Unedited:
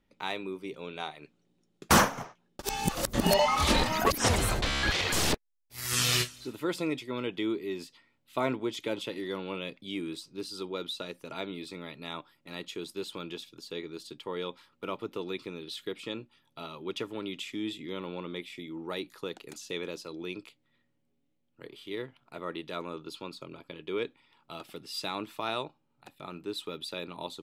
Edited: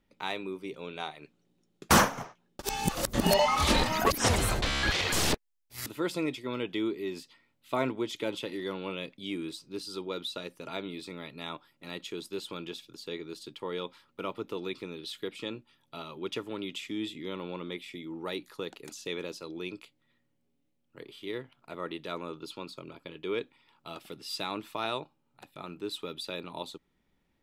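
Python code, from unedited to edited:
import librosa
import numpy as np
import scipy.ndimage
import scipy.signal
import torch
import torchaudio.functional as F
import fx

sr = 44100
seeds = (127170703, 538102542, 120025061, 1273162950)

y = fx.edit(x, sr, fx.cut(start_s=5.86, length_s=0.64), tone=tone)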